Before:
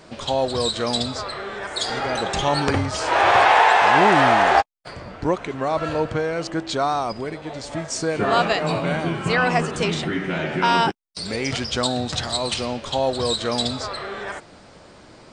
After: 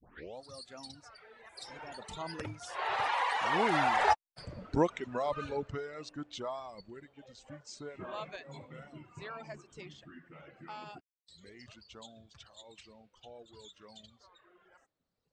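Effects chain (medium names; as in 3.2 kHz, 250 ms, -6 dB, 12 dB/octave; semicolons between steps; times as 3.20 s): tape start-up on the opening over 0.48 s; Doppler pass-by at 4.55 s, 37 m/s, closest 19 m; reverb removal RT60 1.8 s; trim -5 dB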